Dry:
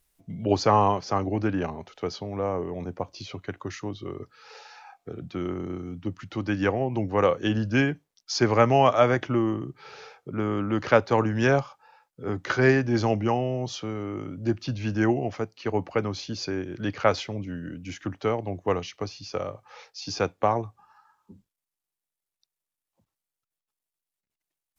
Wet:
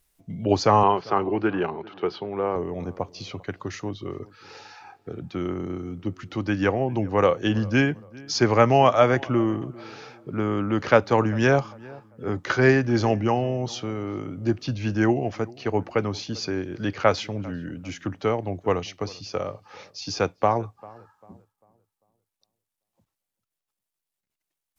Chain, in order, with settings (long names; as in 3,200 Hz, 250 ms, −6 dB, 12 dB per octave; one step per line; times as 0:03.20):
0:00.83–0:02.56: loudspeaker in its box 160–4,000 Hz, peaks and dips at 260 Hz −7 dB, 380 Hz +8 dB, 590 Hz −4 dB, 890 Hz +3 dB, 1,400 Hz +5 dB, 2,900 Hz +4 dB
feedback echo with a low-pass in the loop 396 ms, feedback 35%, low-pass 1,800 Hz, level −22 dB
level +2 dB